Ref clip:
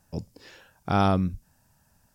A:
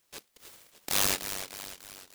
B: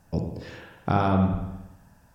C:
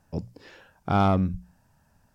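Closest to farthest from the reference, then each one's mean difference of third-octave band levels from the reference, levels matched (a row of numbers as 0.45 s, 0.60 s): C, B, A; 2.0 dB, 7.0 dB, 13.5 dB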